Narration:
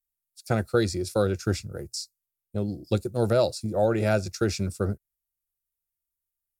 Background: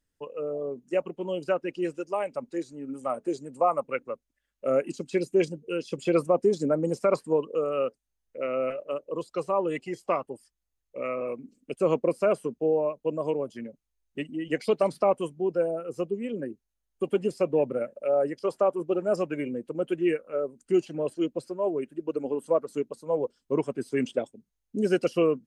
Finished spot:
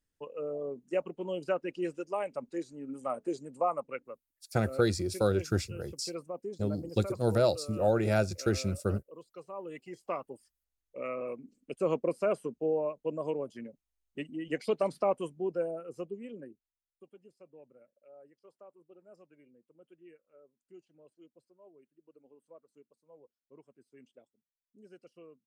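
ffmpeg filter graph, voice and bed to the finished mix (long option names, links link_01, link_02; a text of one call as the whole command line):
ffmpeg -i stem1.wav -i stem2.wav -filter_complex "[0:a]adelay=4050,volume=-3.5dB[link_01];[1:a]volume=7dB,afade=type=out:start_time=3.45:duration=0.97:silence=0.237137,afade=type=in:start_time=9.52:duration=1.04:silence=0.266073,afade=type=out:start_time=15.39:duration=1.7:silence=0.0562341[link_02];[link_01][link_02]amix=inputs=2:normalize=0" out.wav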